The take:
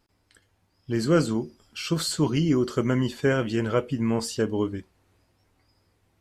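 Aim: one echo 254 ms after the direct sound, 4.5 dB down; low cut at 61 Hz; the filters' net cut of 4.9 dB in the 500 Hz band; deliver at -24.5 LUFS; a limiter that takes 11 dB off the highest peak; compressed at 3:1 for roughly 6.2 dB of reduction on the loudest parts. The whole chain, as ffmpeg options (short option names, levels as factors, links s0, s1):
-af "highpass=61,equalizer=f=500:t=o:g=-6.5,acompressor=threshold=0.0447:ratio=3,alimiter=level_in=1.33:limit=0.0631:level=0:latency=1,volume=0.75,aecho=1:1:254:0.596,volume=3.35"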